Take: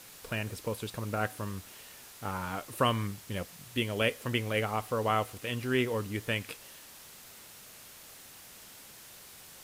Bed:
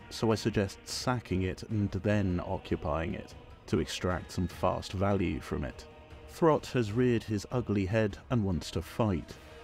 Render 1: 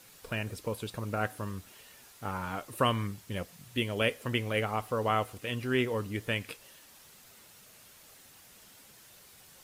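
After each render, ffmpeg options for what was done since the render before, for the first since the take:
ffmpeg -i in.wav -af "afftdn=noise_reduction=6:noise_floor=-52" out.wav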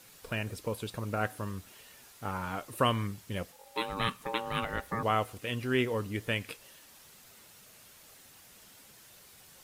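ffmpeg -i in.wav -filter_complex "[0:a]asettb=1/sr,asplit=3[link_01][link_02][link_03];[link_01]atrim=end=3.524[link_04];[link_02]atrim=start=3.52:end=5.03,asetpts=PTS-STARTPTS,afade=type=in:duration=0.004:curve=qsin,afade=type=out:start_time=1.506:duration=0.004:curve=qsin,aeval=exprs='val(0)*sin(2*PI*680*n/s)':channel_layout=same[link_05];[link_03]atrim=start=5.026[link_06];[link_04][link_05]acrossfade=duration=0.004:curve1=hsin:curve2=qsin[link_07];[link_07][link_06]acrossfade=duration=0.004:curve1=qsin:curve2=hsin" out.wav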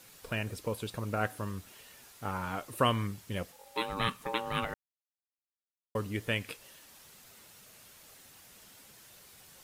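ffmpeg -i in.wav -filter_complex "[0:a]asplit=3[link_01][link_02][link_03];[link_01]atrim=end=4.74,asetpts=PTS-STARTPTS,afade=type=out:start_time=4.736:duration=0.004:curve=hsin[link_04];[link_02]atrim=start=4.74:end=5.95,asetpts=PTS-STARTPTS,volume=0[link_05];[link_03]atrim=start=5.95,asetpts=PTS-STARTPTS,afade=type=in:duration=0.004:curve=hsin[link_06];[link_04][link_05][link_06]concat=n=3:v=0:a=1" out.wav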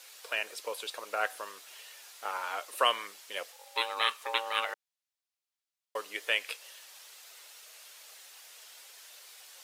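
ffmpeg -i in.wav -af "highpass=frequency=480:width=0.5412,highpass=frequency=480:width=1.3066,equalizer=frequency=4000:width=0.46:gain=6.5" out.wav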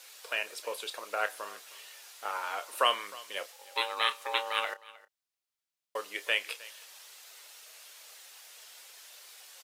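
ffmpeg -i in.wav -filter_complex "[0:a]asplit=2[link_01][link_02];[link_02]adelay=30,volume=-13dB[link_03];[link_01][link_03]amix=inputs=2:normalize=0,aecho=1:1:311:0.0944" out.wav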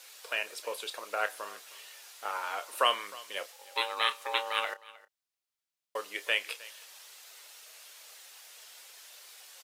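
ffmpeg -i in.wav -af anull out.wav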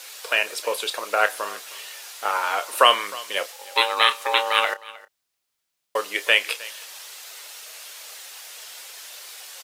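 ffmpeg -i in.wav -af "volume=11.5dB,alimiter=limit=-2dB:level=0:latency=1" out.wav

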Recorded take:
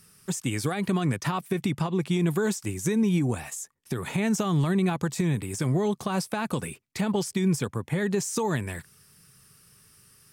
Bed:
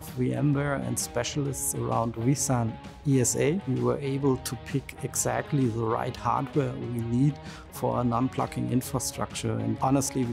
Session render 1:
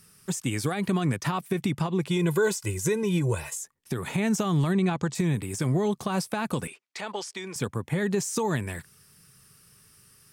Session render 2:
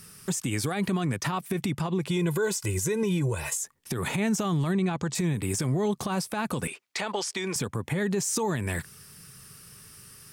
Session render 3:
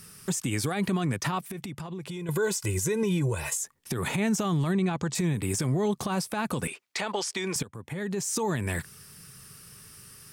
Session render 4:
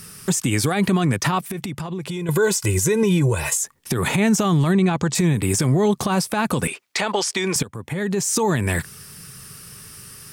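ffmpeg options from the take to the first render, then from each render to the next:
ffmpeg -i in.wav -filter_complex "[0:a]asettb=1/sr,asplit=3[link_01][link_02][link_03];[link_01]atrim=end=2.074[link_04];[link_02]atrim=start=2.07:end=3.58,asetpts=PTS-STARTPTS,afade=type=in:duration=0.004:curve=qsin,afade=type=out:start_time=1.506:duration=0.004:curve=qsin,aecho=1:1:2:0.83,atrim=end_sample=66591[link_05];[link_03]atrim=start=3.576[link_06];[link_04][link_05]acrossfade=duration=0.004:curve1=hsin:curve2=qsin[link_07];[link_07][link_06]acrossfade=duration=0.004:curve1=qsin:curve2=hsin,asettb=1/sr,asplit=3[link_08][link_09][link_10];[link_08]atrim=end=4.734[link_11];[link_09]atrim=start=4.73:end=5.15,asetpts=PTS-STARTPTS,afade=type=in:duration=0.004:curve=qsin,afade=type=out:start_time=0.416:duration=0.004:curve=qsin,lowpass=frequency=8200:width=0.5412,lowpass=frequency=8200:width=1.3066[link_12];[link_10]atrim=start=5.146[link_13];[link_11][link_12]acrossfade=duration=0.004:curve1=hsin:curve2=qsin[link_14];[link_14][link_13]acrossfade=duration=0.004:curve1=qsin:curve2=hsin,asettb=1/sr,asplit=3[link_15][link_16][link_17];[link_15]atrim=end=6.674[link_18];[link_16]atrim=start=6.67:end=7.56,asetpts=PTS-STARTPTS,afade=type=in:duration=0.004:curve=qsin,afade=type=out:start_time=0.886:duration=0.004:curve=qsin,highpass=590,lowpass=6700[link_19];[link_17]atrim=start=7.556[link_20];[link_18][link_19]acrossfade=duration=0.004:curve1=hsin:curve2=qsin[link_21];[link_21][link_20]acrossfade=duration=0.004:curve1=qsin:curve2=hsin" out.wav
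ffmpeg -i in.wav -filter_complex "[0:a]asplit=2[link_01][link_02];[link_02]acompressor=threshold=-32dB:ratio=6,volume=3dB[link_03];[link_01][link_03]amix=inputs=2:normalize=0,alimiter=limit=-19dB:level=0:latency=1:release=121" out.wav
ffmpeg -i in.wav -filter_complex "[0:a]asettb=1/sr,asplit=3[link_01][link_02][link_03];[link_01]atrim=end=1.404[link_04];[link_02]atrim=start=1.4:end=2.29,asetpts=PTS-STARTPTS,afade=type=in:duration=0.004:curve=qsin,afade=type=out:start_time=0.886:duration=0.004:curve=qsin,acompressor=threshold=-36dB:ratio=3:attack=3.2:release=140:knee=1:detection=peak[link_05];[link_03]atrim=start=2.286[link_06];[link_04][link_05]acrossfade=duration=0.004:curve1=hsin:curve2=qsin[link_07];[link_07][link_06]acrossfade=duration=0.004:curve1=qsin:curve2=hsin,asplit=2[link_08][link_09];[link_08]atrim=end=7.63,asetpts=PTS-STARTPTS,afade=type=out:start_time=7.626:duration=0.004:curve=hsin:silence=0.177828[link_10];[link_09]atrim=start=7.63,asetpts=PTS-STARTPTS,afade=type=in:duration=0.89:silence=0.177828[link_11];[link_10][link_11]concat=n=2:v=0:a=1" out.wav
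ffmpeg -i in.wav -af "volume=8.5dB" out.wav

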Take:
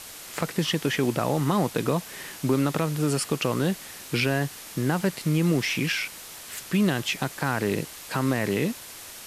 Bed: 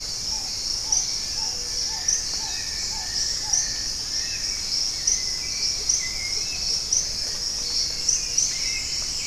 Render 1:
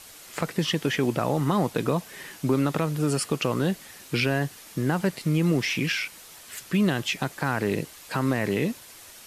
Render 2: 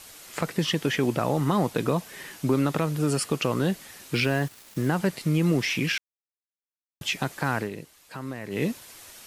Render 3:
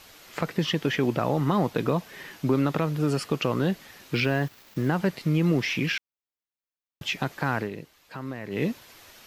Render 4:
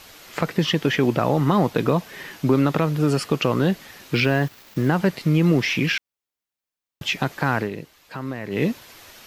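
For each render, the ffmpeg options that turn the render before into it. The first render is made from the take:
ffmpeg -i in.wav -af "afftdn=noise_reduction=6:noise_floor=-42" out.wav
ffmpeg -i in.wav -filter_complex "[0:a]asettb=1/sr,asplit=3[link_01][link_02][link_03];[link_01]atrim=end=4.134[link_04];[link_02]atrim=start=4.13:end=4.89,asetpts=PTS-STARTPTS,afade=type=in:duration=0.004:curve=qsin,afade=type=out:start_time=0.756:duration=0.004:curve=qsin,aeval=exprs='val(0)*gte(abs(val(0)),0.00794)':channel_layout=same[link_05];[link_03]atrim=start=4.886[link_06];[link_04][link_05]acrossfade=duration=0.004:curve1=hsin:curve2=qsin[link_07];[link_07][link_06]acrossfade=duration=0.004:curve1=qsin:curve2=hsin,asplit=5[link_08][link_09][link_10][link_11][link_12];[link_08]atrim=end=5.98,asetpts=PTS-STARTPTS,afade=type=out:start_time=5.976:duration=0.004:curve=hsin[link_13];[link_09]atrim=start=5.98:end=7.01,asetpts=PTS-STARTPTS,volume=0[link_14];[link_10]atrim=start=7.01:end=7.7,asetpts=PTS-STARTPTS,afade=type=in:duration=0.004:curve=hsin,afade=type=out:start_time=0.56:duration=0.13:silence=0.298538[link_15];[link_11]atrim=start=7.7:end=8.5,asetpts=PTS-STARTPTS,volume=-10.5dB[link_16];[link_12]atrim=start=8.5,asetpts=PTS-STARTPTS,afade=type=in:duration=0.13:silence=0.298538[link_17];[link_13][link_14][link_15][link_16][link_17]concat=n=5:v=0:a=1" out.wav
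ffmpeg -i in.wav -af "equalizer=frequency=9300:width=1.1:gain=-12.5" out.wav
ffmpeg -i in.wav -af "volume=5dB" out.wav

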